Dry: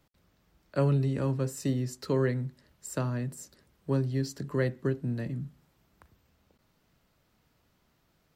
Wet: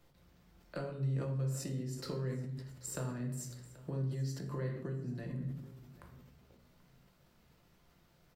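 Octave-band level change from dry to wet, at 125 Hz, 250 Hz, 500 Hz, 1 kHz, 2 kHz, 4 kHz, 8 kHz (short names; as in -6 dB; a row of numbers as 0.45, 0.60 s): -6.5, -9.5, -11.5, -10.0, -10.5, -5.0, -3.0 dB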